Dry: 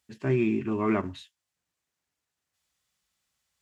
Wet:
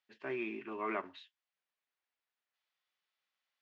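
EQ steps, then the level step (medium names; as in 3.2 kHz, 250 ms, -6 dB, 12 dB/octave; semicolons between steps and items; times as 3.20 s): band-pass 490–3500 Hz; distance through air 120 m; treble shelf 2.2 kHz +7.5 dB; -6.5 dB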